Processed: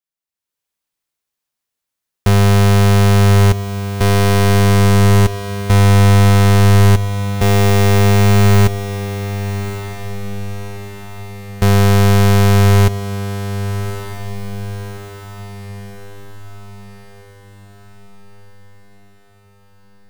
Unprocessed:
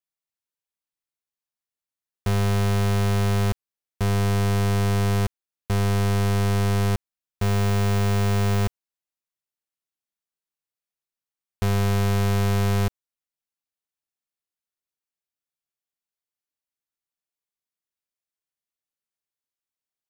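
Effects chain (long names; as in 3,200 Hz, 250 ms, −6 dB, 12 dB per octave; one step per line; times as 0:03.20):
automatic gain control gain up to 11 dB
feedback delay with all-pass diffusion 1,205 ms, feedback 53%, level −11.5 dB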